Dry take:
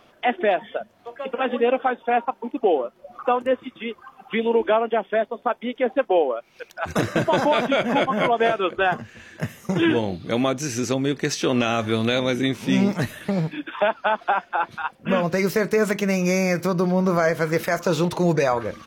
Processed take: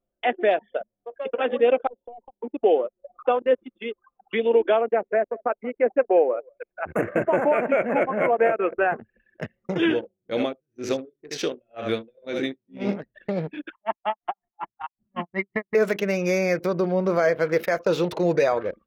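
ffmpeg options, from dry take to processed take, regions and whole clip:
-filter_complex "[0:a]asettb=1/sr,asplit=3[s0][s1][s2];[s0]atrim=end=1.874[s3];[s1]atrim=start=1.87:end=2.41,asetpts=PTS-STARTPTS,afade=t=in:d=0.004:c=qsin,afade=t=out:st=0.536:d=0.004:c=qsin,aeval=exprs='(tanh(14.1*val(0)+0.6)-tanh(0.6))/14.1':c=same,acompressor=threshold=0.0224:ratio=12:attack=3.2:release=140:knee=1:detection=peak,asuperstop=centerf=1700:order=8:qfactor=0.95[s4];[s2]atrim=start=2.406[s5];[s3][s4]acrossfade=d=0.004:c1=hsin:c2=qsin[s6];[s6][s5]acrossfade=d=0.004:c1=qsin:c2=hsin,asettb=1/sr,asplit=3[s7][s8][s9];[s7]atrim=end=4.814[s10];[s8]atrim=start=4.81:end=9,asetpts=PTS-STARTPTS,afade=t=in:d=0.004:c=qsin,afade=t=out:st=4.186:d=0.004:c=qsin,asuperstop=centerf=4300:order=8:qfactor=0.91,aecho=1:1:182:0.0891,atrim=end_sample=184779[s11];[s9]atrim=start=8.996[s12];[s10][s11]acrossfade=d=0.004:c1=hsin:c2=qsin[s13];[s13][s12]acrossfade=d=0.004:c1=qsin:c2=hsin,asettb=1/sr,asplit=3[s14][s15][s16];[s14]atrim=end=9.904[s17];[s15]atrim=start=9.9:end=13.15,asetpts=PTS-STARTPTS,afade=t=in:d=0.004:c=qsin,afade=t=out:st=3.246:d=0.004:c=qsin,asplit=2[s18][s19];[s19]adelay=19,volume=0.251[s20];[s18][s20]amix=inputs=2:normalize=0,atrim=end_sample=143325,aecho=1:1:75:0.447,atrim=end_sample=143325,aeval=exprs='val(0)*pow(10,-26*(0.5-0.5*cos(2*PI*2*n/s))/20)':c=same[s21];[s16]atrim=start=13.146[s22];[s17][s21]acrossfade=d=0.004:c1=hsin:c2=qsin[s23];[s23][s22]acrossfade=d=0.004:c1=qsin:c2=hsin,asettb=1/sr,asplit=3[s24][s25][s26];[s24]atrim=end=13.724[s27];[s25]atrim=start=13.72:end=15.75,asetpts=PTS-STARTPTS,afade=t=in:d=0.004:c=qsin,afade=t=out:st=2.026:d=0.004:c=qsin,lowpass=f=2900:w=0.5412,lowpass=f=2900:w=1.3066,aecho=1:1:1:0.98,atrim=end_sample=89523,aeval=exprs='val(0)*pow(10,-38*(0.5-0.5*cos(2*PI*5.4*n/s))/20)':c=same[s28];[s26]atrim=start=15.746[s29];[s27][s28]acrossfade=d=0.004:c1=hsin:c2=qsin[s30];[s30][s29]acrossfade=d=0.004:c1=qsin:c2=hsin,equalizer=f=125:t=o:w=1:g=-6,equalizer=f=250:t=o:w=1:g=-3,equalizer=f=500:t=o:w=1:g=4,equalizer=f=1000:t=o:w=1:g=-6,equalizer=f=8000:t=o:w=1:g=-9,anlmdn=6.31,lowshelf=f=89:g=-10.5"

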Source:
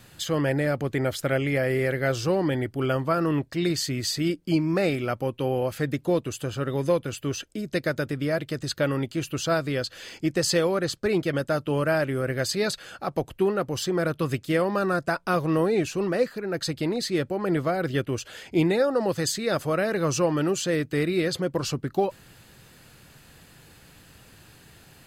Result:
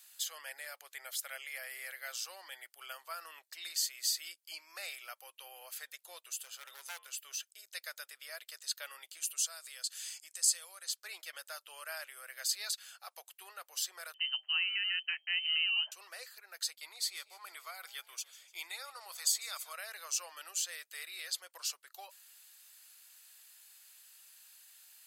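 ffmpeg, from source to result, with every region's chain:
-filter_complex "[0:a]asettb=1/sr,asplit=3[s0][s1][s2];[s0]atrim=end=6.314[s3];[s1]atrim=start=6.31:end=7.1,asetpts=PTS-STARTPTS,afade=t=in:d=0.004:c=qsin,afade=t=out:st=0.786:d=0.004:c=qsin,bandreject=f=95.51:t=h:w=4,bandreject=f=191.02:t=h:w=4,bandreject=f=286.53:t=h:w=4,bandreject=f=382.04:t=h:w=4,bandreject=f=477.55:t=h:w=4,bandreject=f=573.06:t=h:w=4,bandreject=f=668.57:t=h:w=4,bandreject=f=764.08:t=h:w=4,bandreject=f=859.59:t=h:w=4,bandreject=f=955.1:t=h:w=4,bandreject=f=1050.61:t=h:w=4,bandreject=f=1146.12:t=h:w=4,bandreject=f=1241.63:t=h:w=4,bandreject=f=1337.14:t=h:w=4,bandreject=f=1432.65:t=h:w=4,bandreject=f=1528.16:t=h:w=4,bandreject=f=1623.67:t=h:w=4,bandreject=f=1719.18:t=h:w=4,bandreject=f=1814.69:t=h:w=4,bandreject=f=1910.2:t=h:w=4,bandreject=f=2005.71:t=h:w=4,bandreject=f=2101.22:t=h:w=4,bandreject=f=2196.73:t=h:w=4,bandreject=f=2292.24:t=h:w=4,bandreject=f=2387.75:t=h:w=4,bandreject=f=2483.26:t=h:w=4,bandreject=f=2578.77:t=h:w=4,bandreject=f=2674.28:t=h:w=4,bandreject=f=2769.79:t=h:w=4,bandreject=f=2865.3:t=h:w=4,bandreject=f=2960.81:t=h:w=4,bandreject=f=3056.32:t=h:w=4,bandreject=f=3151.83:t=h:w=4,bandreject=f=3247.34:t=h:w=4,bandreject=f=3342.85:t=h:w=4,bandreject=f=3438.36:t=h:w=4,aeval=exprs='0.0794*(abs(mod(val(0)/0.0794+3,4)-2)-1)':c=same[s4];[s2]atrim=start=7.096[s5];[s3][s4]acrossfade=d=0.004:c1=hsin:c2=qsin[s6];[s6][s5]acrossfade=d=0.004:c1=qsin:c2=hsin,asettb=1/sr,asplit=3[s7][s8][s9];[s7]atrim=end=9.174[s10];[s8]atrim=start=9.17:end=10.89,asetpts=PTS-STARTPTS,afade=t=in:d=0.004:c=qsin,afade=t=out:st=1.716:d=0.004:c=qsin,acompressor=threshold=0.0355:ratio=4:attack=3.2:release=140:knee=1:detection=peak,equalizer=f=8500:w=1.1:g=11.5[s11];[s9]atrim=start=10.886[s12];[s10][s11]acrossfade=d=0.004:c1=hsin:c2=qsin[s13];[s13][s12]acrossfade=d=0.004:c1=qsin:c2=hsin,asettb=1/sr,asplit=3[s14][s15][s16];[s14]atrim=end=14.144[s17];[s15]atrim=start=14.14:end=15.92,asetpts=PTS-STARTPTS,afade=t=in:d=0.004:c=qsin,afade=t=out:st=1.776:d=0.004:c=qsin,lowpass=f=2700:t=q:w=0.5098,lowpass=f=2700:t=q:w=0.6013,lowpass=f=2700:t=q:w=0.9,lowpass=f=2700:t=q:w=2.563,afreqshift=-3200,bandreject=f=156.3:t=h:w=4,bandreject=f=312.6:t=h:w=4,bandreject=f=468.9:t=h:w=4,bandreject=f=625.2:t=h:w=4,bandreject=f=781.5:t=h:w=4[s18];[s16]atrim=start=15.916[s19];[s17][s18]acrossfade=d=0.004:c1=hsin:c2=qsin[s20];[s20][s19]acrossfade=d=0.004:c1=qsin:c2=hsin,asettb=1/sr,asplit=3[s21][s22][s23];[s21]atrim=end=16.754[s24];[s22]atrim=start=16.75:end=19.73,asetpts=PTS-STARTPTS,afade=t=in:d=0.004:c=qsin,afade=t=out:st=2.976:d=0.004:c=qsin,aecho=1:1:0.9:0.45,atrim=end_sample=131418,agate=range=0.398:threshold=0.0112:ratio=16:release=100:detection=peak,asplit=5[s25][s26][s27][s28][s29];[s26]adelay=148,afreqshift=60,volume=0.112[s30];[s27]adelay=296,afreqshift=120,volume=0.0575[s31];[s28]adelay=444,afreqshift=180,volume=0.0292[s32];[s29]adelay=592,afreqshift=240,volume=0.015[s33];[s25][s30][s31][s32][s33]amix=inputs=5:normalize=0,atrim=end_sample=131418[s34];[s23]atrim=start=19.726[s35];[s24][s34]acrossfade=d=0.004:c1=hsin:c2=qsin[s36];[s36][s35]acrossfade=d=0.004:c1=qsin:c2=hsin,highpass=f=650:w=0.5412,highpass=f=650:w=1.3066,aderivative,volume=0.841"

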